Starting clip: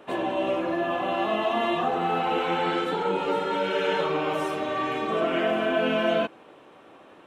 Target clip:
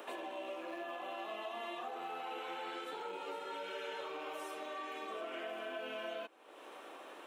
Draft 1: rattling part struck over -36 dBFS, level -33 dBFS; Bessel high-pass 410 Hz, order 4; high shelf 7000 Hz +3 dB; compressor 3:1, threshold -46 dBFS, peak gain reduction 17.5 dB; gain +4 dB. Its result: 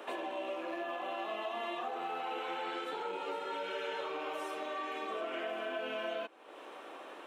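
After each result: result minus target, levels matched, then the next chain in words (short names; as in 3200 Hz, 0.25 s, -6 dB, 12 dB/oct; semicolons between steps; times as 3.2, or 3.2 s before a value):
compressor: peak gain reduction -5 dB; 8000 Hz band -4.5 dB
rattling part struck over -36 dBFS, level -33 dBFS; Bessel high-pass 410 Hz, order 4; high shelf 7000 Hz +3 dB; compressor 3:1, threshold -53 dBFS, peak gain reduction 22.5 dB; gain +4 dB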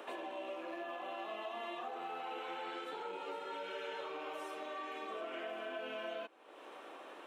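8000 Hz band -4.5 dB
rattling part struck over -36 dBFS, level -33 dBFS; Bessel high-pass 410 Hz, order 4; high shelf 7000 Hz +11.5 dB; compressor 3:1, threshold -53 dBFS, peak gain reduction 22.5 dB; gain +4 dB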